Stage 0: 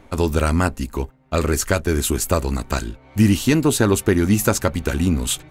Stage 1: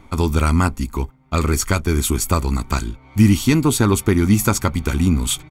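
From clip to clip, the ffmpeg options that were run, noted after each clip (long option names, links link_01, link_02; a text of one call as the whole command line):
ffmpeg -i in.wav -af "aecho=1:1:0.9:0.51" out.wav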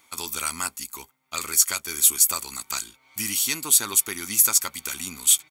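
ffmpeg -i in.wav -af "aderivative,volume=5.5dB" out.wav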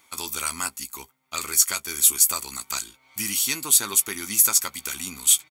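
ffmpeg -i in.wav -filter_complex "[0:a]asplit=2[link_01][link_02];[link_02]adelay=15,volume=-12dB[link_03];[link_01][link_03]amix=inputs=2:normalize=0" out.wav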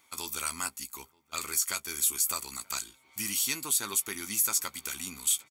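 ffmpeg -i in.wav -filter_complex "[0:a]alimiter=limit=-9.5dB:level=0:latency=1:release=69,asplit=2[link_01][link_02];[link_02]adelay=932.9,volume=-25dB,highshelf=frequency=4000:gain=-21[link_03];[link_01][link_03]amix=inputs=2:normalize=0,volume=-5.5dB" out.wav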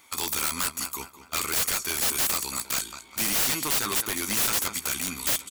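ffmpeg -i in.wav -filter_complex "[0:a]asplit=2[link_01][link_02];[link_02]adelay=203,lowpass=frequency=4100:poles=1,volume=-13dB,asplit=2[link_03][link_04];[link_04]adelay=203,lowpass=frequency=4100:poles=1,volume=0.46,asplit=2[link_05][link_06];[link_06]adelay=203,lowpass=frequency=4100:poles=1,volume=0.46,asplit=2[link_07][link_08];[link_08]adelay=203,lowpass=frequency=4100:poles=1,volume=0.46,asplit=2[link_09][link_10];[link_10]adelay=203,lowpass=frequency=4100:poles=1,volume=0.46[link_11];[link_01][link_03][link_05][link_07][link_09][link_11]amix=inputs=6:normalize=0,aeval=exprs='(mod(22.4*val(0)+1,2)-1)/22.4':channel_layout=same,volume=8.5dB" out.wav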